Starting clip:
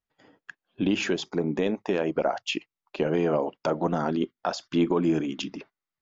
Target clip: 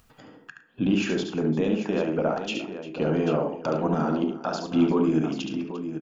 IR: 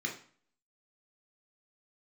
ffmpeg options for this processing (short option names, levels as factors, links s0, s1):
-filter_complex "[0:a]aecho=1:1:71|108|349|789:0.531|0.168|0.133|0.299,acontrast=36,asplit=2[s0][s1];[1:a]atrim=start_sample=2205,highshelf=f=2500:g=-11[s2];[s1][s2]afir=irnorm=-1:irlink=0,volume=0.531[s3];[s0][s3]amix=inputs=2:normalize=0,acompressor=mode=upward:threshold=0.0251:ratio=2.5,volume=0.447"